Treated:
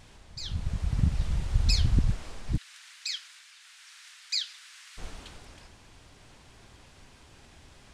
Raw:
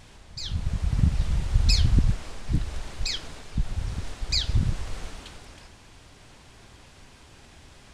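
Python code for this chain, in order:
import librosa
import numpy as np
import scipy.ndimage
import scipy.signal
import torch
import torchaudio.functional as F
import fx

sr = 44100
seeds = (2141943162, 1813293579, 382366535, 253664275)

y = fx.highpass(x, sr, hz=1500.0, slope=24, at=(2.56, 4.97), fade=0.02)
y = y * librosa.db_to_amplitude(-3.5)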